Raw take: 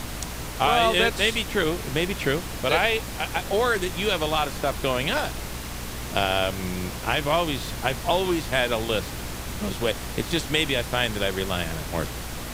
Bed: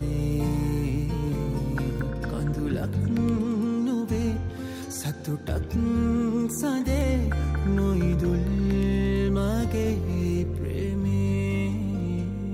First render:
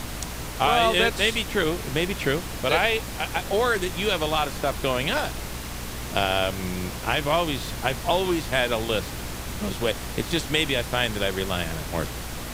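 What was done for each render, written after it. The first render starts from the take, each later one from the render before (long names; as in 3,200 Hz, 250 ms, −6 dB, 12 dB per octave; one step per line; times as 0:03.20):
no processing that can be heard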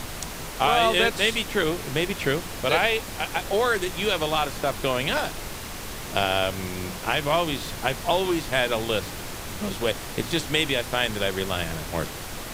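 mains-hum notches 60/120/180/240/300 Hz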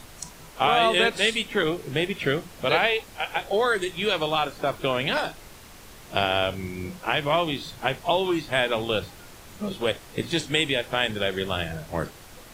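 noise reduction from a noise print 11 dB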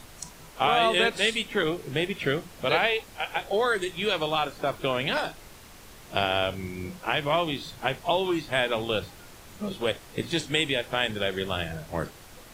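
level −2 dB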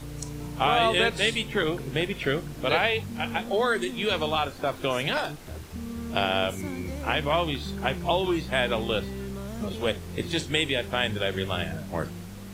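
mix in bed −11.5 dB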